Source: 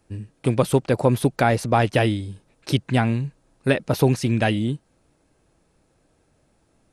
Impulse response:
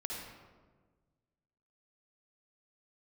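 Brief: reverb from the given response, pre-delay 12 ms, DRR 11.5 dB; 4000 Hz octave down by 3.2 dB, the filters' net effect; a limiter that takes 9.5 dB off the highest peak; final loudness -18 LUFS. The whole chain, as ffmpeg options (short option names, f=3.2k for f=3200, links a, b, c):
-filter_complex "[0:a]equalizer=f=4k:t=o:g=-4.5,alimiter=limit=-13dB:level=0:latency=1,asplit=2[a][b];[1:a]atrim=start_sample=2205,adelay=12[c];[b][c]afir=irnorm=-1:irlink=0,volume=-12.5dB[d];[a][d]amix=inputs=2:normalize=0,volume=8dB"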